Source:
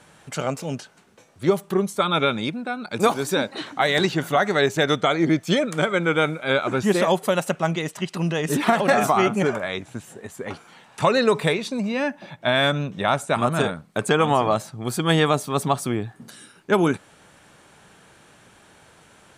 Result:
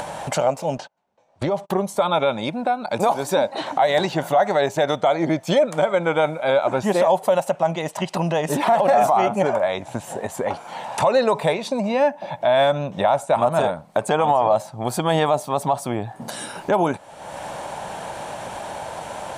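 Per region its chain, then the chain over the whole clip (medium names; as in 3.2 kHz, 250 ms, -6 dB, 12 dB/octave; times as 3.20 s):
0.77–1.70 s: gate -45 dBFS, range -35 dB + low-pass 5.7 kHz + compression, threshold -21 dBFS
whole clip: high-order bell 730 Hz +12.5 dB 1.1 oct; upward compressor, threshold -14 dBFS; loudness maximiser +5 dB; trim -7.5 dB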